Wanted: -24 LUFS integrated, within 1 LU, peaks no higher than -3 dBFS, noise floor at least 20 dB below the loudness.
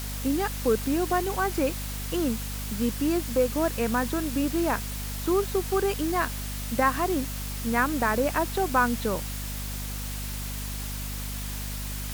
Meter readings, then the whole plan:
hum 50 Hz; harmonics up to 250 Hz; hum level -32 dBFS; noise floor -33 dBFS; noise floor target -48 dBFS; loudness -27.5 LUFS; peak -9.5 dBFS; loudness target -24.0 LUFS
-> notches 50/100/150/200/250 Hz; noise print and reduce 15 dB; gain +3.5 dB

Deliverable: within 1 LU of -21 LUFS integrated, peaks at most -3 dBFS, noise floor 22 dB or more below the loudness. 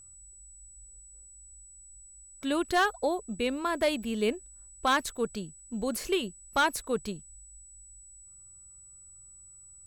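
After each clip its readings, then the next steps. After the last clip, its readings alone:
clipped 0.2%; flat tops at -18.0 dBFS; steady tone 7900 Hz; tone level -50 dBFS; loudness -30.0 LUFS; peak -18.0 dBFS; loudness target -21.0 LUFS
-> clip repair -18 dBFS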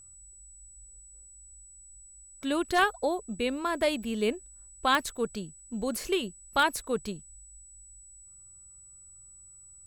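clipped 0.0%; steady tone 7900 Hz; tone level -50 dBFS
-> notch 7900 Hz, Q 30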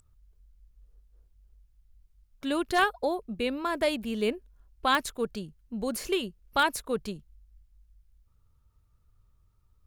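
steady tone none; loudness -29.5 LUFS; peak -10.0 dBFS; loudness target -21.0 LUFS
-> gain +8.5 dB; limiter -3 dBFS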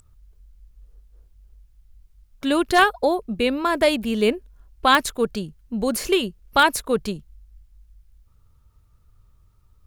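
loudness -21.5 LUFS; peak -3.0 dBFS; noise floor -58 dBFS

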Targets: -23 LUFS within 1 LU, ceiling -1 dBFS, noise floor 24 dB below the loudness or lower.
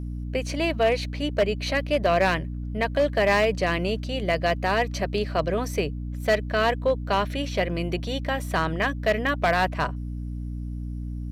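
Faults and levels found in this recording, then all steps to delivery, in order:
clipped 0.6%; flat tops at -14.5 dBFS; hum 60 Hz; harmonics up to 300 Hz; hum level -29 dBFS; loudness -25.5 LUFS; peak -14.5 dBFS; loudness target -23.0 LUFS
-> clip repair -14.5 dBFS; notches 60/120/180/240/300 Hz; gain +2.5 dB

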